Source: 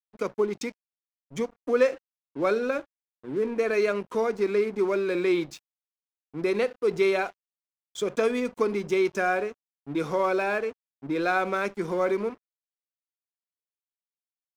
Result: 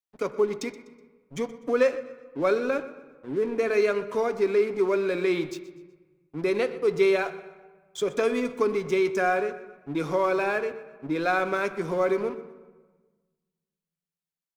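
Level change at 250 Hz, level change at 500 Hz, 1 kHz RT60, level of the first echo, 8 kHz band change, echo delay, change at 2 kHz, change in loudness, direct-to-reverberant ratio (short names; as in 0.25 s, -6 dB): 0.0 dB, +1.0 dB, 1.4 s, -18.0 dB, 0.0 dB, 0.124 s, +0.5 dB, +0.5 dB, 9.5 dB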